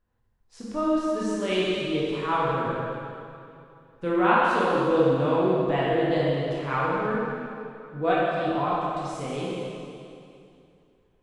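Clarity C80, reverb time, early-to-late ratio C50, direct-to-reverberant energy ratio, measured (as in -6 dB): -1.5 dB, 2.6 s, -3.5 dB, -7.5 dB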